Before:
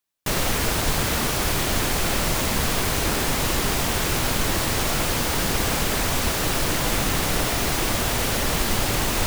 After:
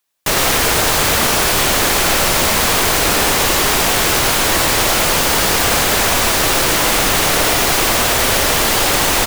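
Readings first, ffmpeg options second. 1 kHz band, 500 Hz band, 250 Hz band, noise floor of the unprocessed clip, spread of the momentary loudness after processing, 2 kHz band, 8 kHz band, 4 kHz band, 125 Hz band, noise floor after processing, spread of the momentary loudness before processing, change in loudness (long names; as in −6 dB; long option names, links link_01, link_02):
+10.5 dB, +9.0 dB, +5.0 dB, −24 dBFS, 0 LU, +10.5 dB, +10.5 dB, +10.5 dB, +2.0 dB, −15 dBFS, 0 LU, +9.5 dB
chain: -filter_complex "[0:a]acrossover=split=360[link_01][link_02];[link_01]alimiter=limit=-21.5dB:level=0:latency=1[link_03];[link_02]acontrast=70[link_04];[link_03][link_04]amix=inputs=2:normalize=0,aecho=1:1:106:0.501,volume=3dB"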